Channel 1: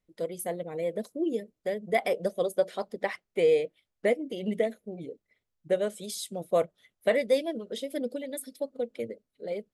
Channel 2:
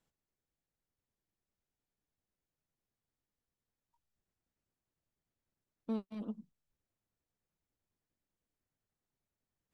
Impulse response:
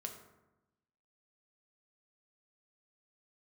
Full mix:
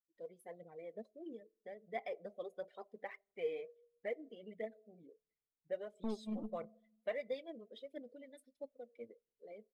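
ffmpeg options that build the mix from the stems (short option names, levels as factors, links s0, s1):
-filter_complex "[0:a]highpass=f=930:p=1,aemphasis=mode=reproduction:type=bsi,volume=0.188,asplit=2[s0][s1];[s1]volume=0.2[s2];[1:a]aeval=exprs='0.0447*(cos(1*acos(clip(val(0)/0.0447,-1,1)))-cos(1*PI/2))+0.00447*(cos(4*acos(clip(val(0)/0.0447,-1,1)))-cos(4*PI/2))':c=same,adelay=150,volume=0.631,asplit=2[s3][s4];[s4]volume=0.2[s5];[2:a]atrim=start_sample=2205[s6];[s2][s5]amix=inputs=2:normalize=0[s7];[s7][s6]afir=irnorm=-1:irlink=0[s8];[s0][s3][s8]amix=inputs=3:normalize=0,afftdn=nr=15:nf=-59,aphaser=in_gain=1:out_gain=1:delay=4.9:decay=0.47:speed=1.5:type=triangular"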